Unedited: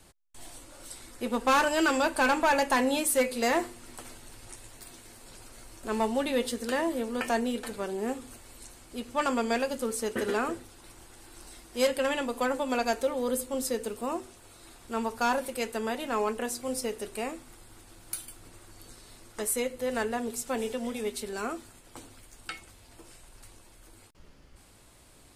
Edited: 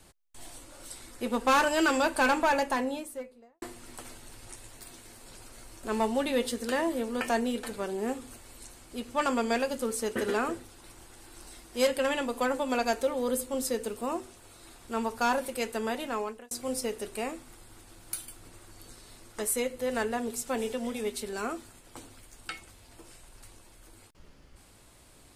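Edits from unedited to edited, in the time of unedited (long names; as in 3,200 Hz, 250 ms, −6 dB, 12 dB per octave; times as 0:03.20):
0:02.25–0:03.62: fade out and dull
0:16.00–0:16.51: fade out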